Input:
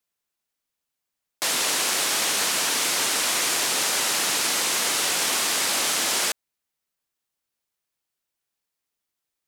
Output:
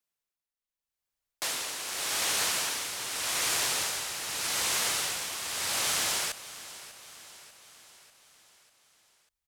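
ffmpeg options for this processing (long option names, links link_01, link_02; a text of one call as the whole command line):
ffmpeg -i in.wav -af "asubboost=boost=11:cutoff=79,tremolo=f=0.84:d=0.64,aecho=1:1:594|1188|1782|2376|2970:0.158|0.0872|0.0479|0.0264|0.0145,volume=-4.5dB" out.wav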